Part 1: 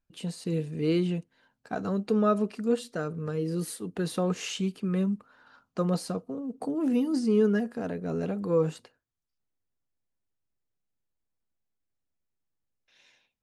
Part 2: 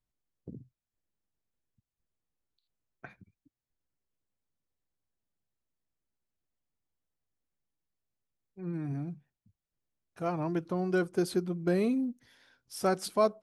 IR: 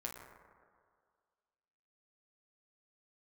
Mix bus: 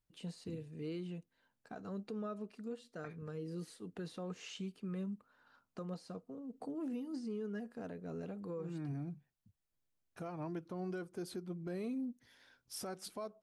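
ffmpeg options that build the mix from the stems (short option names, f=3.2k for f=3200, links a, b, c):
-filter_complex "[0:a]acrossover=split=7200[a][b];[b]acompressor=threshold=-57dB:ratio=4:attack=1:release=60[c];[a][c]amix=inputs=2:normalize=0,volume=-10.5dB[d];[1:a]volume=-1.5dB[e];[d][e]amix=inputs=2:normalize=0,alimiter=level_in=10dB:limit=-24dB:level=0:latency=1:release=488,volume=-10dB"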